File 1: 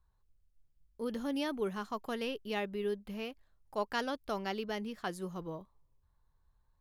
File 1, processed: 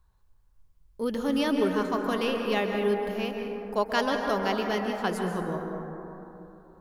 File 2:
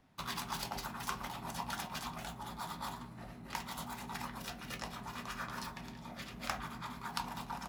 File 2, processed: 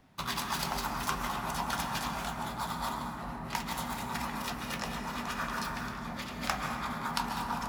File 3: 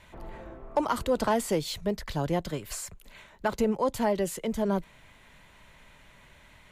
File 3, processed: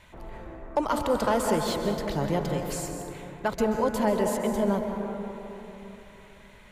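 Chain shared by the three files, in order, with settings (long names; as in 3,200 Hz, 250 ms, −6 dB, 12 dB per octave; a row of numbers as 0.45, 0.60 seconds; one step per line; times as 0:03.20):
dense smooth reverb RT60 3.3 s, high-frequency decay 0.25×, pre-delay 120 ms, DRR 2.5 dB
normalise the peak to −12 dBFS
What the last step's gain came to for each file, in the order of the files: +7.5, +5.5, +0.5 decibels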